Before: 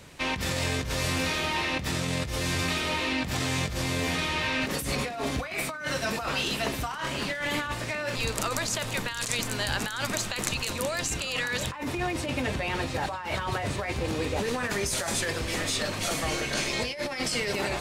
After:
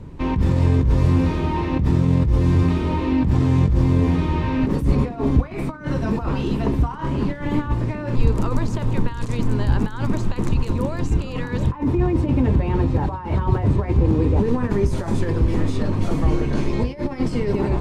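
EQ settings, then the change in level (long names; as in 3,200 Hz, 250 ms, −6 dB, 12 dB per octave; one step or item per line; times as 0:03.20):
spectral tilt −3.5 dB per octave
low shelf with overshoot 500 Hz +8.5 dB, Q 1.5
parametric band 960 Hz +12 dB 0.66 octaves
−4.5 dB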